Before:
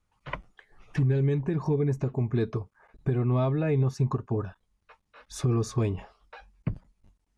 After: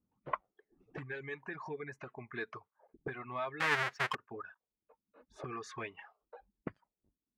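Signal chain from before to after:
0:03.60–0:04.15: each half-wave held at its own peak
envelope filter 240–1,800 Hz, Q 2.2, up, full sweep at −28.5 dBFS
reverb reduction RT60 1.3 s
level +5.5 dB

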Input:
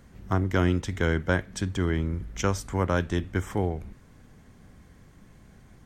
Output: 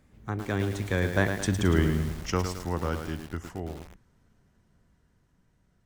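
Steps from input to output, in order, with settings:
source passing by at 0:01.64, 35 m/s, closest 16 metres
feedback echo at a low word length 109 ms, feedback 55%, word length 7 bits, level −6.5 dB
level +3 dB

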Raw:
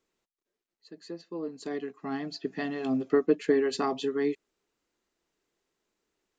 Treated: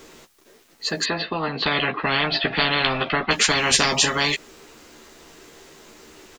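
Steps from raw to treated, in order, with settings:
0:01.04–0:03.31: Butterworth low-pass 3,900 Hz 48 dB per octave
double-tracking delay 13 ms −5.5 dB
every bin compressed towards the loudest bin 10 to 1
level +5.5 dB

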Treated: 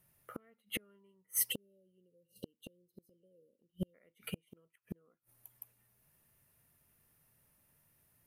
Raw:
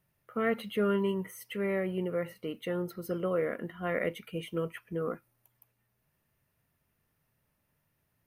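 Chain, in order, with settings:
time-frequency box erased 0:01.51–0:03.94, 590–2,700 Hz
gate with flip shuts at −32 dBFS, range −38 dB
parametric band 11,000 Hz +11 dB 1.2 octaves
expander for the loud parts 1.5 to 1, over −53 dBFS
level +9 dB

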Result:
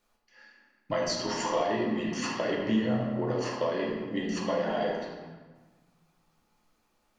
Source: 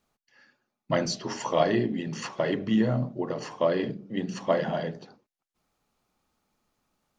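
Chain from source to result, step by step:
parametric band 150 Hz −12.5 dB 0.73 octaves
downward compressor, threshold −29 dBFS, peak gain reduction 11.5 dB
convolution reverb RT60 1.4 s, pre-delay 6 ms, DRR −3 dB

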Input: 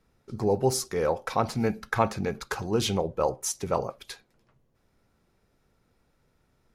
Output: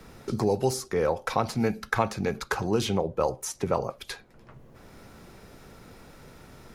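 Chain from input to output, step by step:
multiband upward and downward compressor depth 70%

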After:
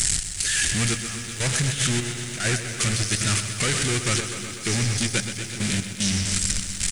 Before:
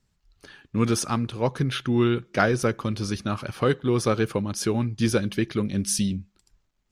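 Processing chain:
converter with a step at zero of −24.5 dBFS
bucket-brigade delay 114 ms, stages 4,096, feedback 83%, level −13 dB
soft clipping −17.5 dBFS, distortion −14 dB
octave-band graphic EQ 250/500/1,000/2,000/8,000 Hz −6/−8/−11/+7/+10 dB
downsampling to 22,050 Hz
high-shelf EQ 5,300 Hz +10.5 dB
compressor whose output falls as the input rises −24 dBFS, ratio −0.5
gate pattern "x.xxx..xxx..x.xx" 75 BPM −12 dB
feedback echo at a low word length 125 ms, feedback 80%, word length 8 bits, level −10.5 dB

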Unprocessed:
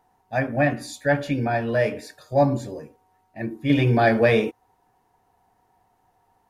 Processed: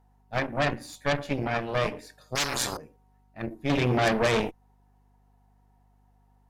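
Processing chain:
harmonic generator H 8 −13 dB, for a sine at −5.5 dBFS
mains hum 50 Hz, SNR 33 dB
0:02.35–0:02.77: every bin compressed towards the loudest bin 10 to 1
level −7 dB

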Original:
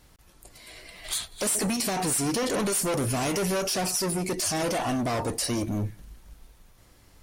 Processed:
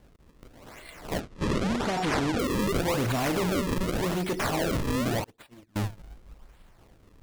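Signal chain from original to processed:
sample-and-hold swept by an LFO 34×, swing 160% 0.87 Hz
0:01.20–0:02.39: low-pass filter 7,100 Hz 12 dB per octave
0:05.24–0:05.76: noise gate −24 dBFS, range −35 dB

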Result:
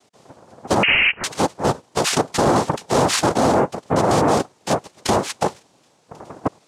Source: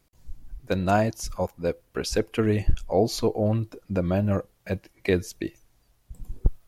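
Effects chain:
cochlear-implant simulation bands 2
0:00.83–0:01.24: voice inversion scrambler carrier 3,000 Hz
boost into a limiter +18.5 dB
level −6.5 dB

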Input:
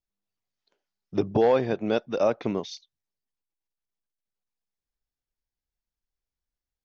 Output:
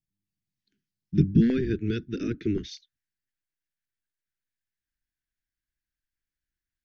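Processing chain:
sub-octave generator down 1 octave, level +1 dB
elliptic band-stop filter 350–1,600 Hz, stop band 40 dB
parametric band 160 Hz +13 dB 1.4 octaves, from 0:01.50 520 Hz, from 0:02.58 1,400 Hz
level −3.5 dB

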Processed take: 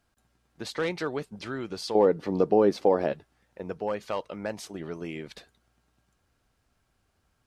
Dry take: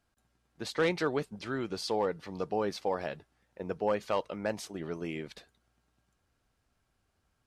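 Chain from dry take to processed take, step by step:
in parallel at +2 dB: downward compressor, threshold −40 dBFS, peak gain reduction 15 dB
0:01.95–0:03.13: on the sum: parametric band 330 Hz +13.5 dB 2.6 octaves
level −3 dB

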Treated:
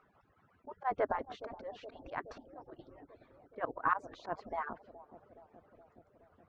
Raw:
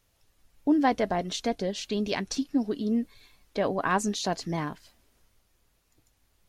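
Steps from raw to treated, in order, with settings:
harmonic-percussive split with one part muted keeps percussive
upward compression, threshold −52 dBFS
low-pass with resonance 1,300 Hz, resonance Q 2.4
volume swells 104 ms
bucket-brigade delay 420 ms, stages 2,048, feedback 73%, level −13.5 dB
level −4.5 dB

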